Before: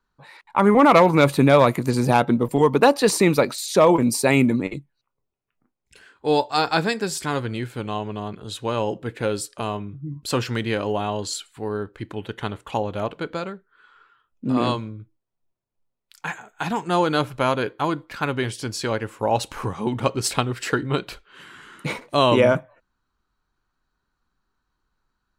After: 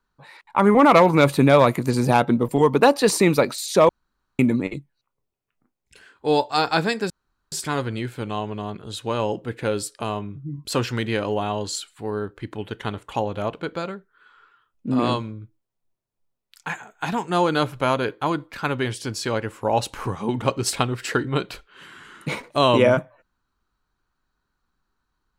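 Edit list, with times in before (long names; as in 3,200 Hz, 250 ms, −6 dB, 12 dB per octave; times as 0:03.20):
0:03.89–0:04.39: fill with room tone
0:07.10: splice in room tone 0.42 s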